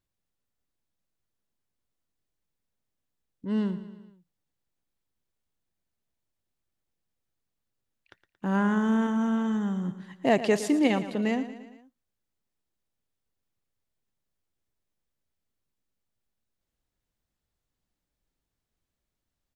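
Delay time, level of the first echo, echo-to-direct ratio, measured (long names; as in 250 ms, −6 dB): 114 ms, −13.5 dB, −12.0 dB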